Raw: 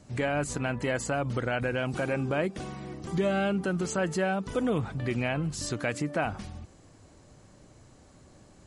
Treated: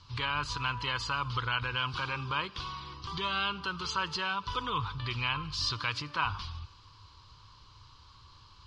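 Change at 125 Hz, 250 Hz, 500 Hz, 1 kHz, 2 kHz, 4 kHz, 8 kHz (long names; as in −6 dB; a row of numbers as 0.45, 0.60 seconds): −5.5, −14.5, −15.5, +2.0, 0.0, +9.5, −8.0 decibels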